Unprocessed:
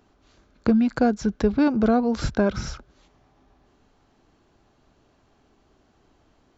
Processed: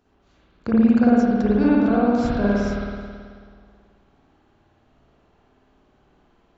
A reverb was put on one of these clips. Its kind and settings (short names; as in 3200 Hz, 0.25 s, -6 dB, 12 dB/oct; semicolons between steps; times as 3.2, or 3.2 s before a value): spring tank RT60 1.9 s, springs 54 ms, chirp 60 ms, DRR -8 dB; gain -6.5 dB